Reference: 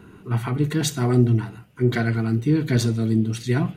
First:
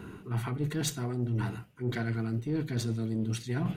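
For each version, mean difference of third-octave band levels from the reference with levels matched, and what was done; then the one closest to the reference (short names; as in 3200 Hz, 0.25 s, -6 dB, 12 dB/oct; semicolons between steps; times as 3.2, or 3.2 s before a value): 3.5 dB: one diode to ground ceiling -13.5 dBFS; reverse; compressor 10:1, threshold -30 dBFS, peak gain reduction 18 dB; reverse; gain +2 dB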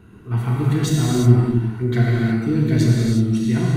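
6.0 dB: low shelf 120 Hz +10 dB; non-linear reverb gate 0.39 s flat, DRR -4.5 dB; gain -5 dB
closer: first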